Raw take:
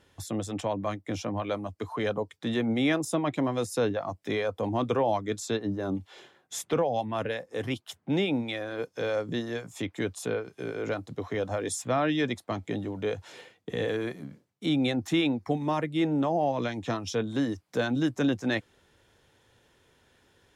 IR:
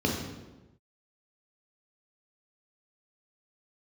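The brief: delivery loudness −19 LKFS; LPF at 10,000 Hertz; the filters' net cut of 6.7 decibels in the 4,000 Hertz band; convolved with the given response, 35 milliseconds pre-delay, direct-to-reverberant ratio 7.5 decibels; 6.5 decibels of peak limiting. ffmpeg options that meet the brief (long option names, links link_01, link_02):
-filter_complex "[0:a]lowpass=10000,equalizer=frequency=4000:width_type=o:gain=-8.5,alimiter=limit=-23dB:level=0:latency=1,asplit=2[link_01][link_02];[1:a]atrim=start_sample=2205,adelay=35[link_03];[link_02][link_03]afir=irnorm=-1:irlink=0,volume=-19dB[link_04];[link_01][link_04]amix=inputs=2:normalize=0,volume=10dB"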